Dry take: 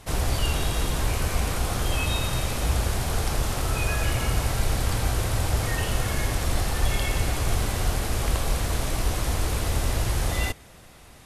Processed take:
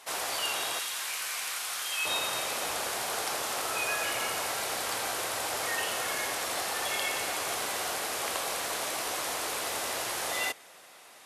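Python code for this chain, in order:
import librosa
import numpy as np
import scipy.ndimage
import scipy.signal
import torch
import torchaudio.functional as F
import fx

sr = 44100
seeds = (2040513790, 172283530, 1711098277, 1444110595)

y = fx.highpass(x, sr, hz=fx.steps((0.0, 700.0), (0.79, 1500.0), (2.05, 550.0)), slope=12)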